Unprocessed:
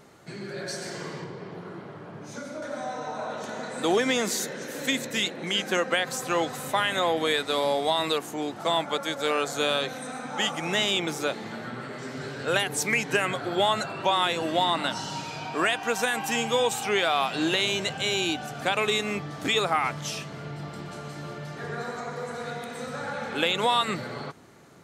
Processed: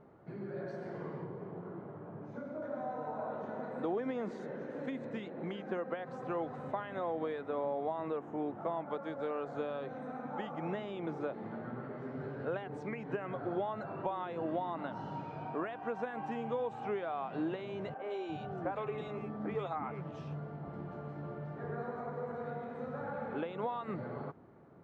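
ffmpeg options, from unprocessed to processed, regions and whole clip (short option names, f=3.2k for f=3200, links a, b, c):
-filter_complex "[0:a]asettb=1/sr,asplit=3[a][b][c];[a]atrim=end=7.414[d];[b]atrim=start=7.41:end=8.86,asetpts=PTS-STARTPTS,afade=t=in:d=0.004:c=qsin,afade=t=out:st=1.446:d=0.004:c=qsin,acrossover=split=3000[e][f];[f]acompressor=threshold=-39dB:ratio=4:attack=1:release=60[g];[e][g]amix=inputs=2:normalize=0,equalizer=f=4.4k:t=o:w=0.22:g=-12[h];[c]atrim=start=8.856[i];[d][h]acrossfade=d=0.004:c1=hsin:c2=qsin[j];[j][i]acrossfade=d=0.004:c1=qsin:c2=hsin,asettb=1/sr,asplit=3[k][l][m];[k]atrim=end=17.944[n];[l]atrim=start=17.94:end=20.68,asetpts=PTS-STARTPTS,afade=t=in:d=0.004:c=qsin,afade=t=out:st=2.736:d=0.004:c=qsin,asplit=2[o][p];[p]adelay=13,volume=-11.5dB[q];[o][q]amix=inputs=2:normalize=0,atrim=end_sample=120834,acrossover=split=300|2300[r][s][t];[t]adelay=100[u];[r]adelay=350[v];[v][s][u]amix=inputs=3:normalize=0,atrim=end_sample=120834[w];[m]atrim=start=20.676[x];[n][w]acrossfade=d=0.004:c1=hsin:c2=qsin[y];[y][x]acrossfade=d=0.004:c1=qsin:c2=hsin,acompressor=threshold=-26dB:ratio=6,lowpass=1k,volume=-4.5dB"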